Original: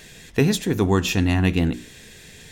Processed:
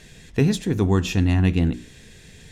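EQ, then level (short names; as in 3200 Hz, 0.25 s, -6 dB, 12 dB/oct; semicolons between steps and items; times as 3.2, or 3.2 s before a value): LPF 11000 Hz 12 dB/oct; low shelf 240 Hz +8 dB; -4.5 dB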